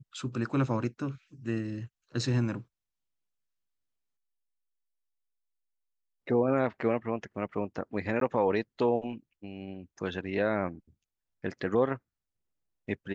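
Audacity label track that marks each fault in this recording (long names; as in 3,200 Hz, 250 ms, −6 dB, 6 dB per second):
8.200000	8.210000	drop-out 13 ms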